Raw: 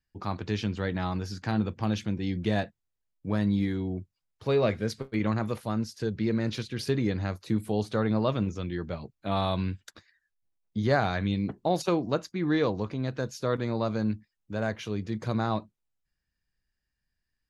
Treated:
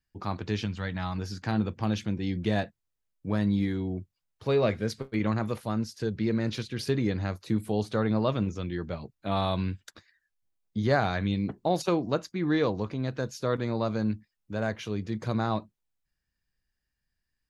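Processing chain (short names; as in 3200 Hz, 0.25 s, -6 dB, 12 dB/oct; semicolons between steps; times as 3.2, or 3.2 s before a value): 0.65–1.18 bell 380 Hz -10.5 dB 1.2 oct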